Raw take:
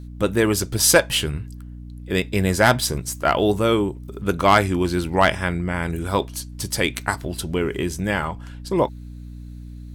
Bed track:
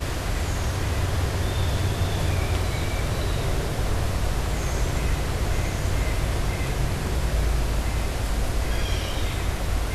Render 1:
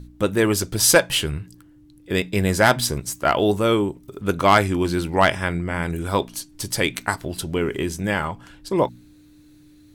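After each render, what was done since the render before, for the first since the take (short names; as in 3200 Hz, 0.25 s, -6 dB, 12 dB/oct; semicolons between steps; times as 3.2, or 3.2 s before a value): de-hum 60 Hz, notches 4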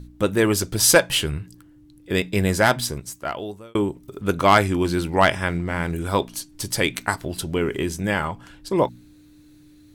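2.43–3.75 fade out; 5.48–5.94 backlash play -42.5 dBFS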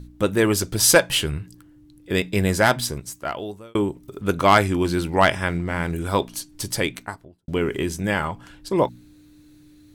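6.64–7.48 studio fade out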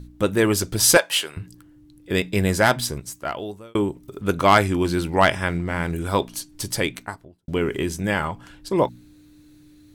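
0.97–1.37 HPF 560 Hz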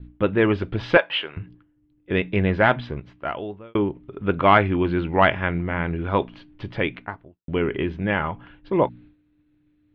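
expander -41 dBFS; steep low-pass 3100 Hz 36 dB/oct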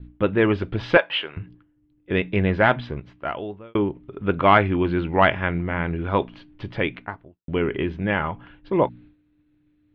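nothing audible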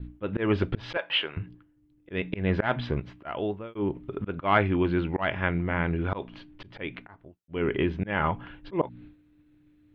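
auto swell 0.222 s; vocal rider within 3 dB 0.5 s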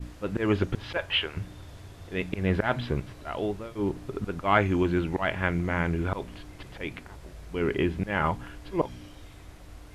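add bed track -21.5 dB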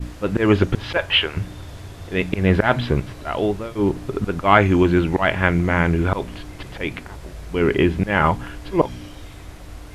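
gain +9 dB; limiter -1 dBFS, peak gain reduction 1.5 dB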